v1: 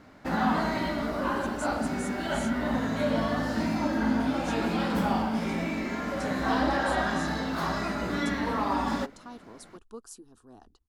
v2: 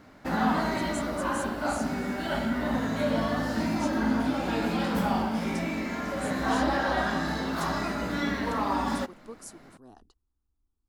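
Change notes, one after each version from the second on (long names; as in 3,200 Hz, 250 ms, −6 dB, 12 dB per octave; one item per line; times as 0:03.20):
speech: entry −0.65 s
master: add high-shelf EQ 11,000 Hz +6 dB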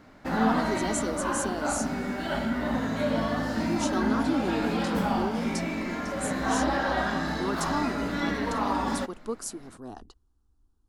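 speech +10.5 dB
master: add high-shelf EQ 11,000 Hz −6 dB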